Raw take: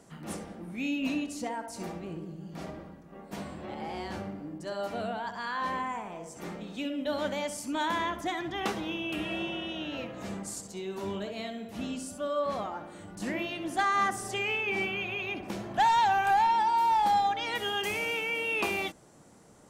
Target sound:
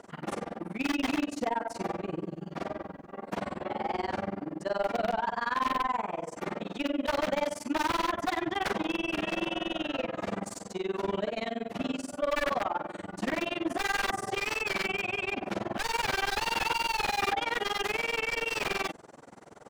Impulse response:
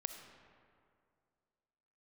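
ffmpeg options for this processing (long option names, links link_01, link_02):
-filter_complex "[0:a]aeval=exprs='(mod(17.8*val(0)+1,2)-1)/17.8':channel_layout=same,tremolo=f=21:d=1,asplit=2[link_01][link_02];[link_02]highpass=frequency=720:poles=1,volume=15dB,asoftclip=type=tanh:threshold=-25dB[link_03];[link_01][link_03]amix=inputs=2:normalize=0,lowpass=frequency=1300:poles=1,volume=-6dB,volume=6.5dB"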